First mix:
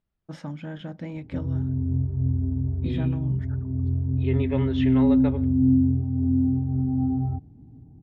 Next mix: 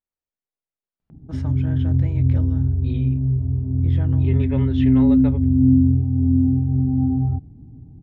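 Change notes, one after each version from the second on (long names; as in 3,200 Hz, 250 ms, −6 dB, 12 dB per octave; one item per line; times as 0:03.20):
first voice: entry +1.00 s
background: add spectral tilt −2 dB per octave
reverb: off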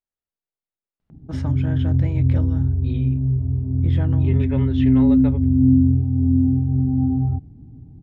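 first voice +4.5 dB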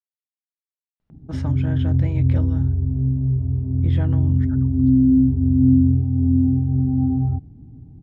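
second voice: muted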